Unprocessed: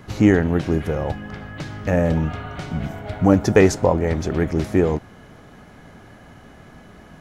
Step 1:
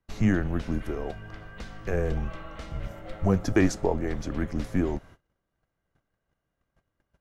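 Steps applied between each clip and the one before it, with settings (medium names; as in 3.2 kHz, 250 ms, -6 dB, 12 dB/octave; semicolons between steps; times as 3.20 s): frequency shift -99 Hz; gate -39 dBFS, range -28 dB; trim -8 dB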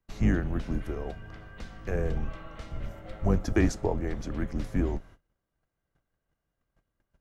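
octave divider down 2 oct, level 0 dB; trim -3.5 dB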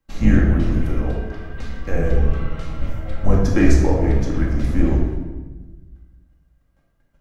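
simulated room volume 750 m³, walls mixed, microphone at 2.2 m; trim +4 dB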